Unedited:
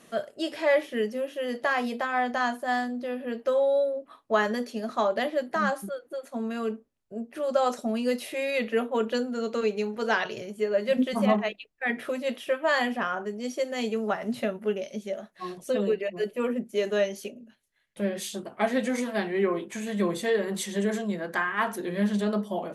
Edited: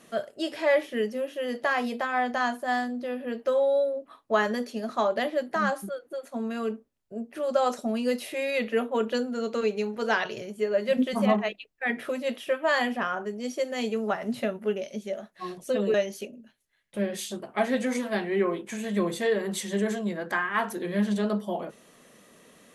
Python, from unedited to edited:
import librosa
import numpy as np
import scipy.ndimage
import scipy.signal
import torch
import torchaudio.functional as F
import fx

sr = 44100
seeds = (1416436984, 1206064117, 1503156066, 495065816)

y = fx.edit(x, sr, fx.cut(start_s=15.94, length_s=1.03), tone=tone)